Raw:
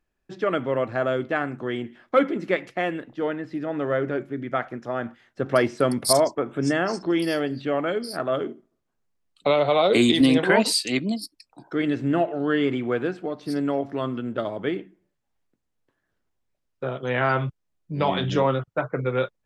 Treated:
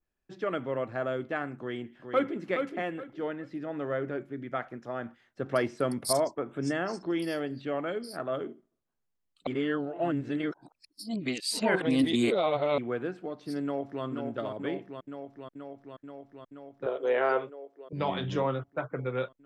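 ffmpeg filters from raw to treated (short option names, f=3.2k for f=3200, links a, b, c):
-filter_complex "[0:a]asplit=2[a][b];[b]afade=t=in:st=1.57:d=0.01,afade=t=out:st=2.4:d=0.01,aecho=0:1:420|840|1260:0.501187|0.125297|0.0313242[c];[a][c]amix=inputs=2:normalize=0,asplit=2[d][e];[e]afade=t=in:st=13.63:d=0.01,afade=t=out:st=14.04:d=0.01,aecho=0:1:480|960|1440|1920|2400|2880|3360|3840|4320|4800|5280|5760:0.562341|0.449873|0.359898|0.287919|0.230335|0.184268|0.147414|0.117932|0.0943452|0.0754762|0.0603809|0.0483048[f];[d][f]amix=inputs=2:normalize=0,asettb=1/sr,asplit=3[g][h][i];[g]atrim=end=16.864[j];[h]atrim=start=16.86:end=17.93,asetpts=PTS-STARTPTS,afade=t=in:d=0.004:c=qsin,afade=t=out:st=1.066:d=0.004:c=qsin,highpass=f=440:t=q:w=3.9[k];[i]atrim=start=17.926[l];[j][k]acrossfade=d=0.004:c1=hsin:c2=qsin[m];[m][l]acrossfade=d=0.004:c1=qsin:c2=hsin,asplit=3[n][o][p];[n]atrim=end=9.472[q];[o]atrim=start=9.468:end=12.782,asetpts=PTS-STARTPTS,areverse[r];[p]atrim=start=12.778[s];[q][r]acrossfade=d=0.004:c1=hsin:c2=hsin[t];[t][s]acrossfade=d=0.004:c1=hsin:c2=hsin,adynamicequalizer=threshold=0.00794:dfrequency=4400:dqfactor=0.77:tfrequency=4400:tqfactor=0.77:attack=5:release=100:ratio=0.375:range=2:mode=cutabove:tftype=bell,volume=-7.5dB"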